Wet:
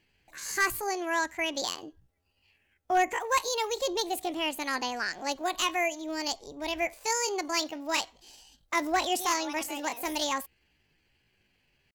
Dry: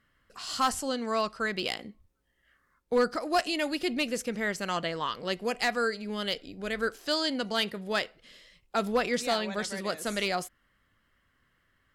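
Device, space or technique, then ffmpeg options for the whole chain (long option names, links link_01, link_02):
chipmunk voice: -filter_complex "[0:a]asettb=1/sr,asplit=3[link_01][link_02][link_03];[link_01]atrim=end=7.814[link_04];[link_02]atrim=start=7.81:end=9.62,asetpts=PTS-STARTPTS,afade=type=in:duration=0.004:curve=qsin,afade=type=out:start_time=1.806:duration=0.004:curve=qsin,highshelf=frequency=4700:gain=3.5[link_05];[link_03]atrim=start=9.616[link_06];[link_04][link_05]acrossfade=duration=0.004:curve1=hsin:curve2=qsin[link_07];[link_07][link_06]acrossfade=duration=0.004:curve1=qsin:curve2=hsin,asetrate=66075,aresample=44100,atempo=0.66742"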